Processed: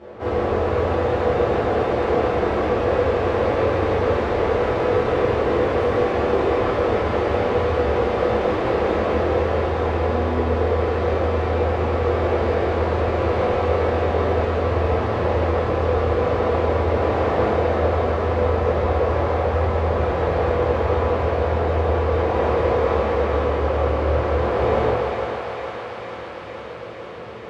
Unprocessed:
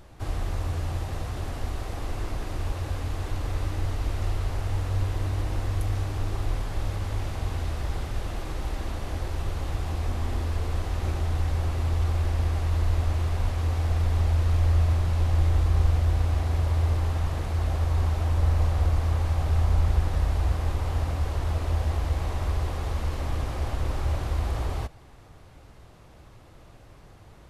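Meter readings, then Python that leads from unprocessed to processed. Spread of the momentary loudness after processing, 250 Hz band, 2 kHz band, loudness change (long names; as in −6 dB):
2 LU, +13.5 dB, +12.5 dB, +7.0 dB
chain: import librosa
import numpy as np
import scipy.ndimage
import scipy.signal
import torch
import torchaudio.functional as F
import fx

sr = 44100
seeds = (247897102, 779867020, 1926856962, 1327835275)

p1 = x + fx.echo_thinned(x, sr, ms=452, feedback_pct=84, hz=690.0, wet_db=-6.0, dry=0)
p2 = fx.quant_companded(p1, sr, bits=8)
p3 = fx.rev_fdn(p2, sr, rt60_s=2.0, lf_ratio=1.0, hf_ratio=0.7, size_ms=82.0, drr_db=-10.0)
p4 = fx.rider(p3, sr, range_db=4, speed_s=0.5)
p5 = p3 + (p4 * 10.0 ** (1.5 / 20.0))
p6 = fx.bandpass_edges(p5, sr, low_hz=170.0, high_hz=2400.0)
p7 = fx.peak_eq(p6, sr, hz=470.0, db=13.0, octaves=0.54)
y = p7 * 10.0 ** (-5.5 / 20.0)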